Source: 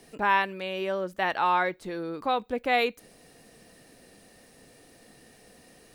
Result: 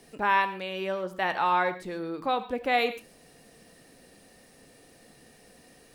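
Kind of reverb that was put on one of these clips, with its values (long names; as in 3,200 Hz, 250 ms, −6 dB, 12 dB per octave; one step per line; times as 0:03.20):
reverb whose tail is shaped and stops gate 160 ms flat, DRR 10.5 dB
level −1 dB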